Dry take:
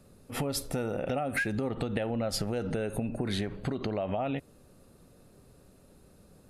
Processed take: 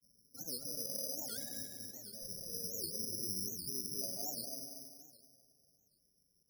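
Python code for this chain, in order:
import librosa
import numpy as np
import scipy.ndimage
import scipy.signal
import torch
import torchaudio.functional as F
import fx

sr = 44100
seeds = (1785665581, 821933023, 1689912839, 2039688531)

y = scipy.ndimage.median_filter(x, 5, mode='constant')
y = fx.doppler_pass(y, sr, speed_mps=11, closest_m=2.8, pass_at_s=1.87)
y = fx.highpass(y, sr, hz=850.0, slope=6)
y = fx.tilt_eq(y, sr, slope=-4.0)
y = fx.over_compress(y, sr, threshold_db=-49.0, ratio=-1.0)
y = fx.spec_topn(y, sr, count=8)
y = fx.granulator(y, sr, seeds[0], grain_ms=100.0, per_s=20.0, spray_ms=100.0, spread_st=0)
y = fx.echo_feedback(y, sr, ms=239, feedback_pct=34, wet_db=-5)
y = fx.rev_plate(y, sr, seeds[1], rt60_s=2.2, hf_ratio=0.95, predelay_ms=0, drr_db=5.0)
y = (np.kron(scipy.signal.resample_poly(y, 1, 8), np.eye(8)[0]) * 8)[:len(y)]
y = fx.record_warp(y, sr, rpm=78.0, depth_cents=250.0)
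y = y * librosa.db_to_amplitude(-3.0)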